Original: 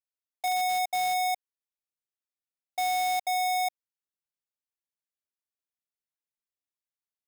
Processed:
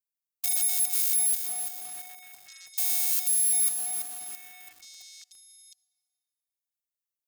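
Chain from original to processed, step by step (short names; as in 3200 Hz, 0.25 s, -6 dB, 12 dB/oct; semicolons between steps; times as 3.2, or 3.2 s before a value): spectral whitening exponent 0.1; pre-emphasis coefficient 0.97; delay with a stepping band-pass 0.511 s, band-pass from 250 Hz, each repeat 1.4 oct, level -1 dB; on a send at -21 dB: reverb RT60 2.4 s, pre-delay 47 ms; on the sum: lo-fi delay 0.334 s, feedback 55%, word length 6-bit, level -7 dB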